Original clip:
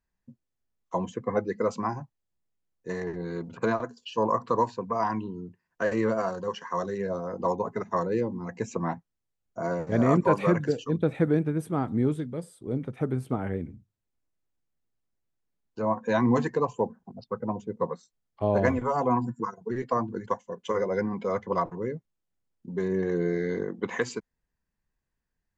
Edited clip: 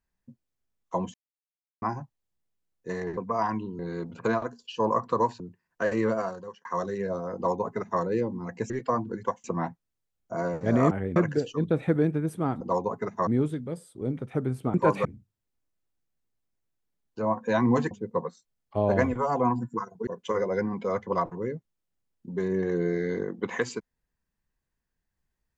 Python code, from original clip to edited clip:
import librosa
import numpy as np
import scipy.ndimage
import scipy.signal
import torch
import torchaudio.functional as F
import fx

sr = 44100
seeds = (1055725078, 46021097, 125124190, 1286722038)

y = fx.edit(x, sr, fx.silence(start_s=1.14, length_s=0.68),
    fx.move(start_s=4.78, length_s=0.62, to_s=3.17),
    fx.fade_out_span(start_s=6.13, length_s=0.52),
    fx.duplicate(start_s=7.35, length_s=0.66, to_s=11.93),
    fx.swap(start_s=10.17, length_s=0.31, other_s=13.4, other_length_s=0.25),
    fx.cut(start_s=16.51, length_s=1.06),
    fx.move(start_s=19.73, length_s=0.74, to_s=8.7), tone=tone)